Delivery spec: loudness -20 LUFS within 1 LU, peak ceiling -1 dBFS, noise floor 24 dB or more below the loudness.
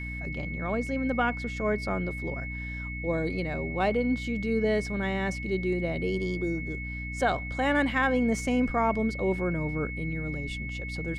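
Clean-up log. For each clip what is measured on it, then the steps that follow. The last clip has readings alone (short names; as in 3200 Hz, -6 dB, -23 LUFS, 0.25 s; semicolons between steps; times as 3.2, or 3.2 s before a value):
hum 60 Hz; harmonics up to 300 Hz; hum level -34 dBFS; steady tone 2200 Hz; tone level -37 dBFS; loudness -29.0 LUFS; peak -13.5 dBFS; loudness target -20.0 LUFS
-> notches 60/120/180/240/300 Hz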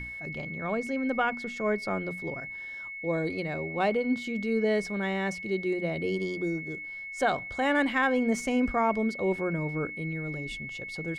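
hum none; steady tone 2200 Hz; tone level -37 dBFS
-> notch 2200 Hz, Q 30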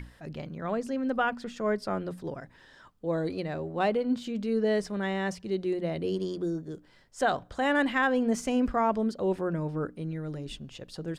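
steady tone none; loudness -30.0 LUFS; peak -14.5 dBFS; loudness target -20.0 LUFS
-> gain +10 dB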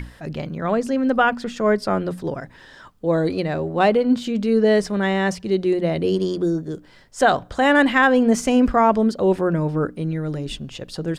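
loudness -20.0 LUFS; peak -4.5 dBFS; noise floor -48 dBFS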